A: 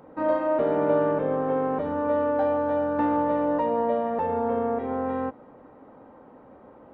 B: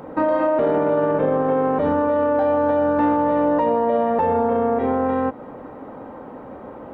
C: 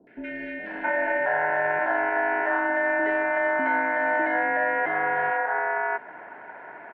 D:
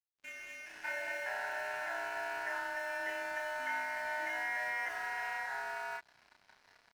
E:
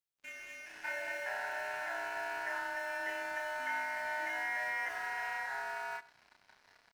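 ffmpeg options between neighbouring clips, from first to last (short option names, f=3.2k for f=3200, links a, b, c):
-filter_complex "[0:a]asplit=2[a][b];[b]acompressor=threshold=-32dB:ratio=6,volume=0.5dB[c];[a][c]amix=inputs=2:normalize=0,alimiter=limit=-17.5dB:level=0:latency=1:release=30,volume=6.5dB"
-filter_complex "[0:a]aeval=exprs='val(0)*sin(2*PI*1200*n/s)':c=same,acrossover=split=220 2300:gain=0.0794 1 0.126[a][b][c];[a][b][c]amix=inputs=3:normalize=0,acrossover=split=390|2300[d][e][f];[f]adelay=70[g];[e]adelay=670[h];[d][h][g]amix=inputs=3:normalize=0"
-filter_complex "[0:a]bandpass=f=3.1k:t=q:w=1.8:csg=0,aeval=exprs='sgn(val(0))*max(abs(val(0))-0.00316,0)':c=same,asplit=2[a][b];[b]adelay=31,volume=-2.5dB[c];[a][c]amix=inputs=2:normalize=0,volume=-1.5dB"
-af "aecho=1:1:97:0.106"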